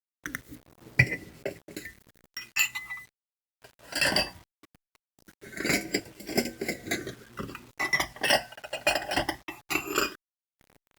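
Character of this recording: phasing stages 12, 0.2 Hz, lowest notch 370–1200 Hz; random-step tremolo, depth 70%; a quantiser's noise floor 10-bit, dither none; Opus

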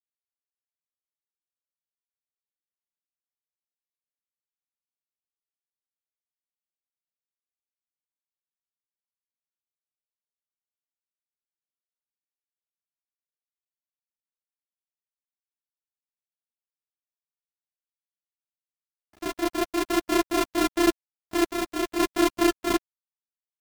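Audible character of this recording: a buzz of ramps at a fixed pitch in blocks of 128 samples; random-step tremolo; a quantiser's noise floor 10-bit, dither none; a shimmering, thickened sound

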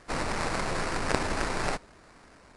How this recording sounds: aliases and images of a low sample rate 3.3 kHz, jitter 20%; AAC

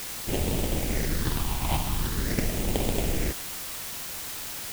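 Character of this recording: aliases and images of a low sample rate 1.3 kHz, jitter 20%; phasing stages 6, 0.44 Hz, lowest notch 450–1500 Hz; a quantiser's noise floor 6-bit, dither triangular

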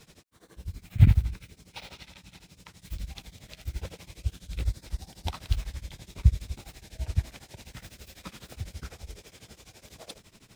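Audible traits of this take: tremolo triangle 12 Hz, depth 95%

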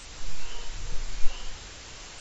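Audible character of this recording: phasing stages 2, 1.3 Hz, lowest notch 150–1800 Hz; a quantiser's noise floor 6-bit, dither triangular; AAC

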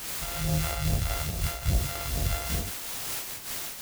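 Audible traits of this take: a buzz of ramps at a fixed pitch in blocks of 64 samples; phasing stages 2, 2.4 Hz, lowest notch 150–1700 Hz; a quantiser's noise floor 6-bit, dither triangular; random flutter of the level

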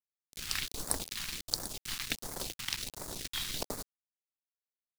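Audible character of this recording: chopped level 2.7 Hz, depth 65%, duty 80%; a quantiser's noise floor 6-bit, dither none; phasing stages 2, 1.4 Hz, lowest notch 490–2700 Hz

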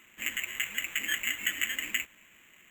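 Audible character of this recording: aliases and images of a low sample rate 4.9 kHz, jitter 0%

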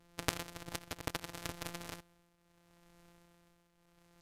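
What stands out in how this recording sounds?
a buzz of ramps at a fixed pitch in blocks of 256 samples; tremolo triangle 0.74 Hz, depth 75%; AAC

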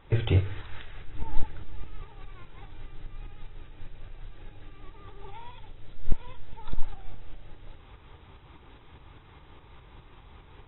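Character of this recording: a quantiser's noise floor 10-bit, dither triangular; tremolo saw up 4.9 Hz, depth 50%; AAC

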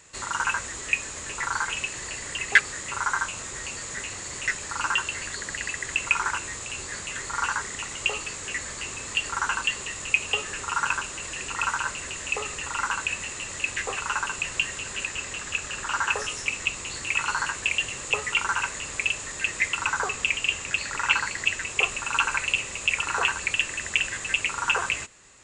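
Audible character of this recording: noise floor -37 dBFS; spectral tilt 0.0 dB/octave

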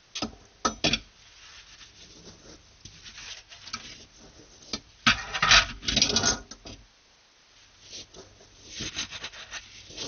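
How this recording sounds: phasing stages 2, 0.51 Hz, lowest notch 280–2600 Hz; a quantiser's noise floor 10-bit, dither triangular; MP2

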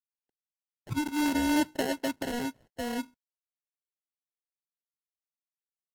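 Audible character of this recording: a quantiser's noise floor 12-bit, dither none; phasing stages 6, 0.7 Hz, lowest notch 580–1300 Hz; aliases and images of a low sample rate 1.2 kHz, jitter 0%; AAC

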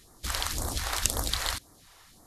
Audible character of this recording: phasing stages 2, 1.9 Hz, lowest notch 170–2700 Hz

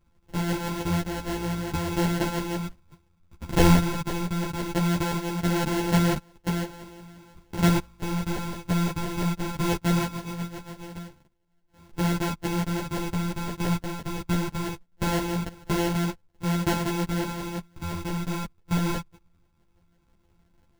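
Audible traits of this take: a buzz of ramps at a fixed pitch in blocks of 256 samples; phasing stages 6, 0.2 Hz, lowest notch 520–1600 Hz; aliases and images of a low sample rate 1.2 kHz, jitter 0%; a shimmering, thickened sound

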